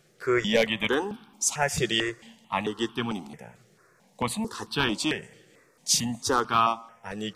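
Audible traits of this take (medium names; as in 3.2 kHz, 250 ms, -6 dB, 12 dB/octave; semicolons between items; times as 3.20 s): notches that jump at a steady rate 4.5 Hz 260–2000 Hz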